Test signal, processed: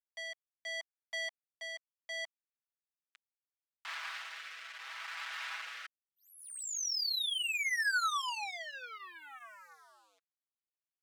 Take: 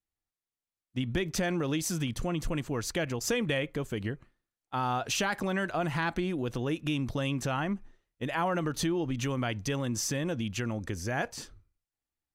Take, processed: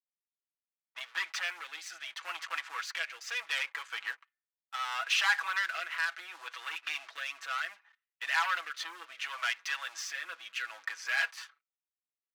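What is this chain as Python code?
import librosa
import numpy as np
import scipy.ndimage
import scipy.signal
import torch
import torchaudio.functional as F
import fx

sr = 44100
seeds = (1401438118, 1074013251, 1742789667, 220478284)

y = scipy.signal.sosfilt(scipy.signal.butter(2, 2500.0, 'lowpass', fs=sr, output='sos'), x)
y = fx.leveller(y, sr, passes=3)
y = y + 0.63 * np.pad(y, (int(6.1 * sr / 1000.0), 0))[:len(y)]
y = fx.rotary(y, sr, hz=0.7)
y = scipy.signal.sosfilt(scipy.signal.butter(4, 1200.0, 'highpass', fs=sr, output='sos'), y)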